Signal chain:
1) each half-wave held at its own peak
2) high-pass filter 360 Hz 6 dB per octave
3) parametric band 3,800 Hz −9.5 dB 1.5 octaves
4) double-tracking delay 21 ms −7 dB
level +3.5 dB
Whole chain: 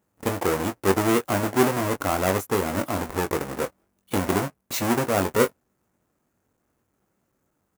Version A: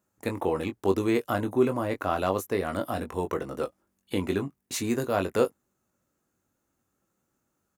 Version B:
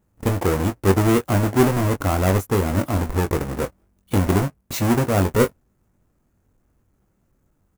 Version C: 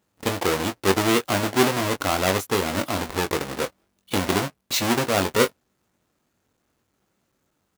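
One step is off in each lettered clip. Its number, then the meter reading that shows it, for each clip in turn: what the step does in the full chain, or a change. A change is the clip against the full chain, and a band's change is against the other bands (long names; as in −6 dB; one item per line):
1, distortion level −6 dB
2, 125 Hz band +10.0 dB
3, 4 kHz band +7.5 dB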